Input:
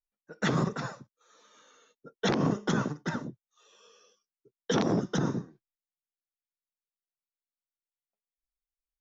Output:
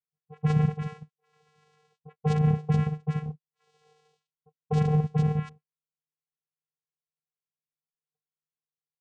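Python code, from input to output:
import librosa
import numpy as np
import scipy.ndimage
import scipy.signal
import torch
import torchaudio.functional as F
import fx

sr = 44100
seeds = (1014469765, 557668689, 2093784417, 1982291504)

y = fx.dispersion(x, sr, late='highs', ms=40.0, hz=900.0)
y = fx.spec_paint(y, sr, seeds[0], shape='rise', start_s=5.27, length_s=0.22, low_hz=310.0, high_hz=2900.0, level_db=-39.0)
y = fx.vocoder(y, sr, bands=4, carrier='square', carrier_hz=152.0)
y = y * librosa.db_to_amplitude(4.5)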